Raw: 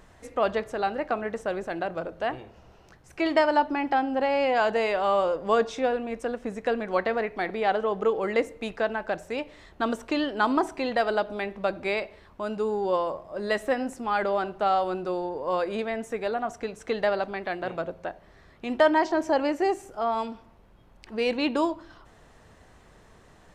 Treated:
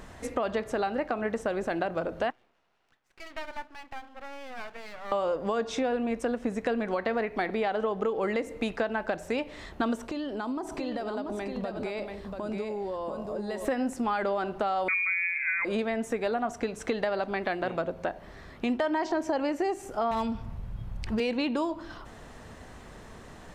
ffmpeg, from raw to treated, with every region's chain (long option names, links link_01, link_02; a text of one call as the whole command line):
ffmpeg -i in.wav -filter_complex "[0:a]asettb=1/sr,asplit=3[link_01][link_02][link_03];[link_01]atrim=end=2.304[link_04];[link_02]atrim=start=2.3:end=5.12,asetpts=PTS-STARTPTS,afade=type=in:duration=0.004:curve=qsin,afade=type=out:start_time=2.816:duration=0.004:curve=qsin,lowpass=1900,aderivative,aeval=exprs='max(val(0),0)':channel_layout=same[link_05];[link_03]atrim=start=5.116[link_06];[link_04][link_05]acrossfade=duration=0.004:curve1=hsin:curve2=qsin[link_07];[link_07][link_06]acrossfade=duration=0.004:curve1=qsin:curve2=hsin,asettb=1/sr,asplit=3[link_08][link_09][link_10];[link_08]atrim=end=10.064[link_11];[link_09]atrim=start=10.06:end=13.65,asetpts=PTS-STARTPTS,afade=type=in:duration=0.004:curve=qsin,afade=type=out:start_time=3.586:duration=0.004:curve=qsin,equalizer=frequency=2000:width_type=o:width=2:gain=-6,acompressor=threshold=-39dB:ratio=5:attack=3.2:release=140:knee=1:detection=peak,aecho=1:1:687:0.531,atrim=end_sample=158319[link_12];[link_10]atrim=start=13.646[link_13];[link_11][link_12]acrossfade=duration=0.004:curve1=hsin:curve2=qsin[link_14];[link_14][link_13]acrossfade=duration=0.004:curve1=qsin:curve2=hsin,asettb=1/sr,asplit=3[link_15][link_16][link_17];[link_15]atrim=end=14.884[link_18];[link_16]atrim=start=14.88:end=15.65,asetpts=PTS-STARTPTS,afade=type=in:duration=0.004:curve=qsin,afade=type=out:start_time=0.766:duration=0.004:curve=qsin,lowshelf=frequency=320:width_type=q:width=1.5:gain=11,lowpass=frequency=2200:width_type=q:width=0.5098,lowpass=frequency=2200:width_type=q:width=0.6013,lowpass=frequency=2200:width_type=q:width=0.9,lowpass=frequency=2200:width_type=q:width=2.563,afreqshift=-2600[link_19];[link_17]atrim=start=15.646[link_20];[link_18][link_19]acrossfade=duration=0.004:curve1=hsin:curve2=qsin[link_21];[link_21][link_20]acrossfade=duration=0.004:curve1=qsin:curve2=hsin,asettb=1/sr,asplit=3[link_22][link_23][link_24];[link_22]atrim=end=20.114[link_25];[link_23]atrim=start=20.11:end=21.2,asetpts=PTS-STARTPTS,afade=type=in:duration=0.004:curve=qsin,afade=type=out:start_time=1.086:duration=0.004:curve=qsin,lowshelf=frequency=190:width_type=q:width=1.5:gain=13,aeval=exprs='0.0794*(abs(mod(val(0)/0.0794+3,4)-2)-1)':channel_layout=same[link_26];[link_24]atrim=start=21.196[link_27];[link_25][link_26]acrossfade=duration=0.004:curve1=hsin:curve2=qsin[link_28];[link_28][link_27]acrossfade=duration=0.004:curve1=qsin:curve2=hsin,equalizer=frequency=240:width_type=o:width=0.32:gain=4.5,alimiter=limit=-18dB:level=0:latency=1:release=135,acompressor=threshold=-35dB:ratio=3,volume=7dB" out.wav